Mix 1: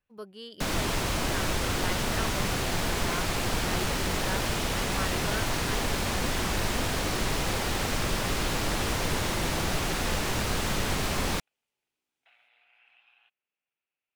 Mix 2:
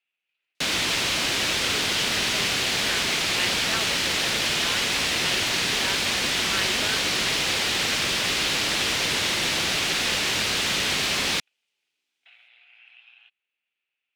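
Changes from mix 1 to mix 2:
speech: entry +1.55 s
master: add meter weighting curve D

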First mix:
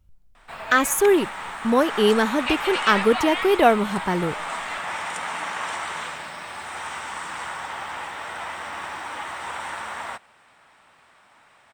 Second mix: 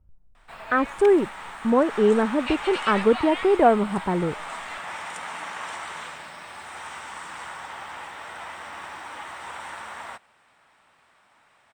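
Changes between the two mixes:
speech: add low-pass filter 1,200 Hz
background −5.0 dB

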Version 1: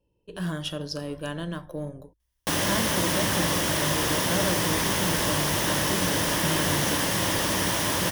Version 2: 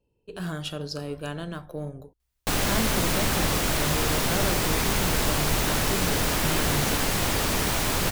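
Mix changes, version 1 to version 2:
background: remove high-pass filter 100 Hz 12 dB per octave
master: remove EQ curve with evenly spaced ripples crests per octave 1.2, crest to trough 6 dB

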